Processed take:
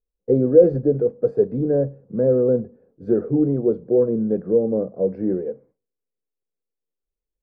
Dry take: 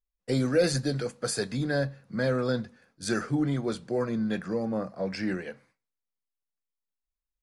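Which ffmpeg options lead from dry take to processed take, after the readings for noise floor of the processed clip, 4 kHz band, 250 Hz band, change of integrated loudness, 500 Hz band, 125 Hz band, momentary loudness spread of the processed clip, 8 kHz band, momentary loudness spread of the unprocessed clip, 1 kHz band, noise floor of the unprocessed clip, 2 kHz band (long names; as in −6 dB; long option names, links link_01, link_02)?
−84 dBFS, below −35 dB, +7.5 dB, +9.5 dB, +12.5 dB, +4.5 dB, 9 LU, below −40 dB, 8 LU, −5.0 dB, below −85 dBFS, below −15 dB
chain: -af "lowpass=frequency=450:width_type=q:width=4,volume=3.5dB"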